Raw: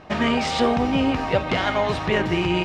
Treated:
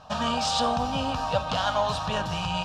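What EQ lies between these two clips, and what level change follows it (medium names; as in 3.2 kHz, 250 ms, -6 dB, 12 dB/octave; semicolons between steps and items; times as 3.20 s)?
tilt shelf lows -5.5 dB, about 1.4 kHz; treble shelf 6.2 kHz -5 dB; static phaser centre 860 Hz, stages 4; +2.0 dB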